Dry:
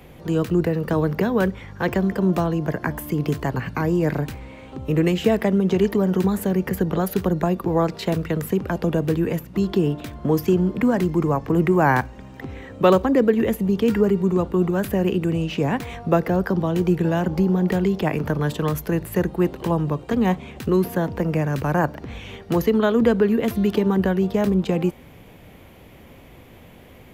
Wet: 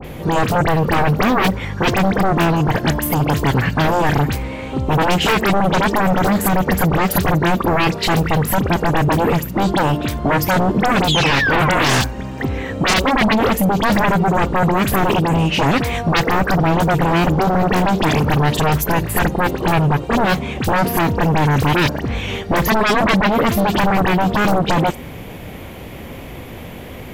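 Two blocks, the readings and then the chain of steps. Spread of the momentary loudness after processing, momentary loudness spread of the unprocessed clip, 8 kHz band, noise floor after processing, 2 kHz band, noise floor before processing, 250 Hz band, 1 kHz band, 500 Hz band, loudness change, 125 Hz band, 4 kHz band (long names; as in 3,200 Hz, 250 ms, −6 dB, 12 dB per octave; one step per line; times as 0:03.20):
9 LU, 7 LU, +13.5 dB, −32 dBFS, +12.0 dB, −46 dBFS, +2.5 dB, +11.5 dB, +2.0 dB, +5.0 dB, +5.5 dB, +15.0 dB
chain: sound drawn into the spectrogram fall, 0:11.04–0:11.99, 530–3,800 Hz −29 dBFS
sine wavefolder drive 18 dB, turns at −3 dBFS
all-pass dispersion highs, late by 46 ms, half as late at 2,600 Hz
level −8.5 dB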